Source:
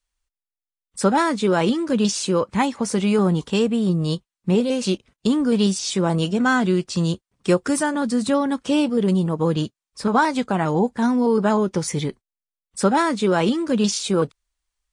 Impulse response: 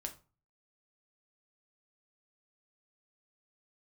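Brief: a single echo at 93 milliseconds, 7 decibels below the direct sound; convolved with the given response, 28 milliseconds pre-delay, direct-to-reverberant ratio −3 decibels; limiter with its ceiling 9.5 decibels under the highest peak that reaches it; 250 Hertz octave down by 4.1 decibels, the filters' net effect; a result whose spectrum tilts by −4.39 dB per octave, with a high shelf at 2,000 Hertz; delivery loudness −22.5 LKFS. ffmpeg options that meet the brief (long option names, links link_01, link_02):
-filter_complex "[0:a]equalizer=frequency=250:width_type=o:gain=-5.5,highshelf=frequency=2000:gain=4,alimiter=limit=-15dB:level=0:latency=1,aecho=1:1:93:0.447,asplit=2[link_01][link_02];[1:a]atrim=start_sample=2205,adelay=28[link_03];[link_02][link_03]afir=irnorm=-1:irlink=0,volume=5dB[link_04];[link_01][link_04]amix=inputs=2:normalize=0,volume=-3.5dB"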